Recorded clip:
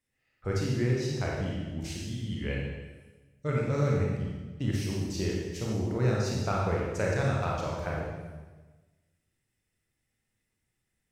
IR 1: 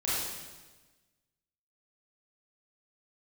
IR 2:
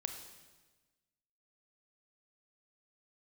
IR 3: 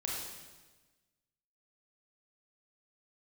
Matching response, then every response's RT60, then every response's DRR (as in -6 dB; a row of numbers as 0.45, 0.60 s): 3; 1.3, 1.3, 1.3 s; -9.5, 5.5, -3.5 dB